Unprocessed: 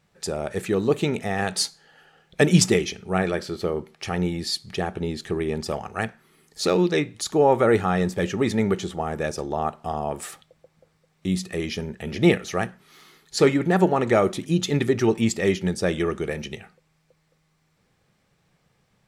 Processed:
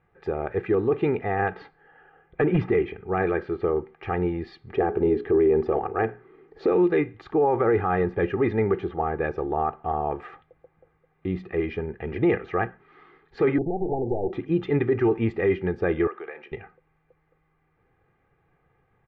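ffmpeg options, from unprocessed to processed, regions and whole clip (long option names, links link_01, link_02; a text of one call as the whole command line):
ffmpeg -i in.wav -filter_complex "[0:a]asettb=1/sr,asplit=3[link_01][link_02][link_03];[link_01]atrim=end=1.344[link_04];[link_02]atrim=start=1.34:end=3.12,asetpts=PTS-STARTPTS,afade=type=in:duration=0.004:curve=qsin,afade=type=out:start_time=1.776:duration=0.004:curve=qsin,lowpass=2900,asoftclip=type=hard:threshold=-9dB[link_05];[link_03]atrim=start=3.116[link_06];[link_04][link_05]acrossfade=duration=0.004:curve1=hsin:curve2=qsin[link_07];[link_07][link_06]acrossfade=duration=0.004:curve1=qsin:curve2=hsin,asettb=1/sr,asplit=3[link_08][link_09][link_10];[link_08]atrim=end=4.684[link_11];[link_09]atrim=start=4.68:end=6.72,asetpts=PTS-STARTPTS,afade=type=in:duration=0.004:curve=qsin,afade=type=out:start_time=2.036:duration=0.004:curve=qsin,equalizer=frequency=400:width_type=o:width=1.5:gain=10,bandreject=frequency=60:width_type=h:width=6,bandreject=frequency=120:width_type=h:width=6,bandreject=frequency=180:width_type=h:width=6,bandreject=frequency=240:width_type=h:width=6,bandreject=frequency=300:width_type=h:width=6,bandreject=frequency=360:width_type=h:width=6,bandreject=frequency=420:width_type=h:width=6[link_12];[link_10]atrim=start=6.716[link_13];[link_11][link_12]acrossfade=duration=0.004:curve1=hsin:curve2=qsin[link_14];[link_14][link_13]acrossfade=duration=0.004:curve1=qsin:curve2=hsin,asettb=1/sr,asplit=3[link_15][link_16][link_17];[link_15]atrim=end=13.584[link_18];[link_16]atrim=start=13.58:end=14.33,asetpts=PTS-STARTPTS,afade=type=in:duration=0.004:curve=qsin,afade=type=out:start_time=0.746:duration=0.004:curve=qsin,aeval=exprs='clip(val(0),-1,0.0631)':channel_layout=same,acompressor=threshold=-21dB:ratio=6:attack=3.2:release=140:knee=1:detection=peak,asuperstop=centerf=2000:order=20:qfactor=0.54[link_19];[link_17]atrim=start=14.326[link_20];[link_18][link_19]acrossfade=duration=0.004:curve1=hsin:curve2=qsin[link_21];[link_21][link_20]acrossfade=duration=0.004:curve1=qsin:curve2=hsin,asettb=1/sr,asplit=3[link_22][link_23][link_24];[link_22]atrim=end=16.074[link_25];[link_23]atrim=start=16.07:end=16.52,asetpts=PTS-STARTPTS,afade=type=in:duration=0.004:curve=qsin,afade=type=out:start_time=0.446:duration=0.004:curve=qsin,highpass=710,acompressor=threshold=-34dB:ratio=3:attack=3.2:release=140:knee=1:detection=peak[link_26];[link_24]atrim=start=16.516[link_27];[link_25][link_26]acrossfade=duration=0.004:curve1=hsin:curve2=qsin[link_28];[link_28][link_27]acrossfade=duration=0.004:curve1=qsin:curve2=hsin,lowpass=frequency=2100:width=0.5412,lowpass=frequency=2100:width=1.3066,aecho=1:1:2.5:0.57,alimiter=limit=-13.5dB:level=0:latency=1:release=13" out.wav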